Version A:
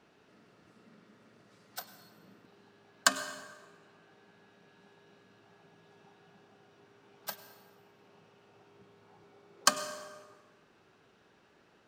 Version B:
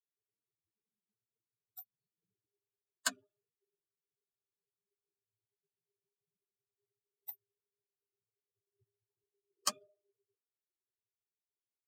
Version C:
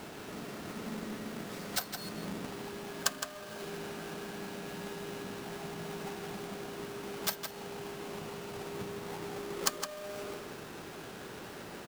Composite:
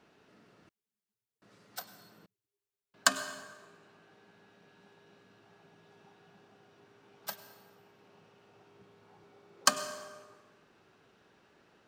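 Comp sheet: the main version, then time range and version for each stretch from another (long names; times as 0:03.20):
A
0:00.69–0:01.42: punch in from B
0:02.26–0:02.94: punch in from B
not used: C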